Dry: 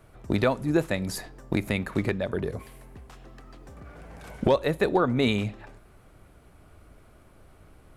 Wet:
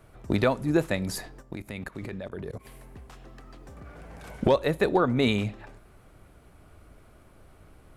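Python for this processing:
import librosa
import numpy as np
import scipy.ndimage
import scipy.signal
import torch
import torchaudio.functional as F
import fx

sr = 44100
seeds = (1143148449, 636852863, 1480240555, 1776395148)

y = fx.level_steps(x, sr, step_db=18, at=(1.41, 2.64), fade=0.02)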